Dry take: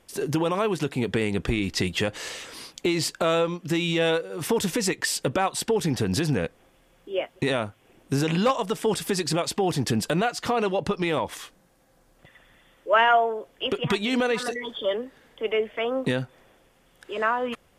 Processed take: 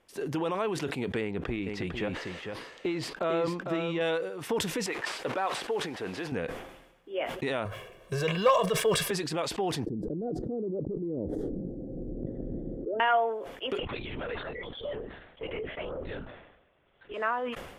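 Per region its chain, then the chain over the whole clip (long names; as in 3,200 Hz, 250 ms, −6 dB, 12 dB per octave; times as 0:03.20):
0:01.21–0:04.01: parametric band 11,000 Hz −11.5 dB 2.6 octaves + single-tap delay 451 ms −6 dB
0:04.86–0:06.32: linear delta modulator 64 kbit/s, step −35 dBFS + bass and treble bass −14 dB, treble −7 dB
0:07.65–0:09.11: mu-law and A-law mismatch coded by mu + comb filter 1.8 ms, depth 98%
0:09.86–0:13.00: inverse Chebyshev low-pass filter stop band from 980 Hz, stop band 50 dB + low-shelf EQ 240 Hz −6 dB + envelope flattener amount 100%
0:13.79–0:17.14: downward compressor 3 to 1, threshold −27 dBFS + linear-prediction vocoder at 8 kHz whisper
whole clip: bass and treble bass −5 dB, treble −8 dB; level that may fall only so fast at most 61 dB per second; level −5.5 dB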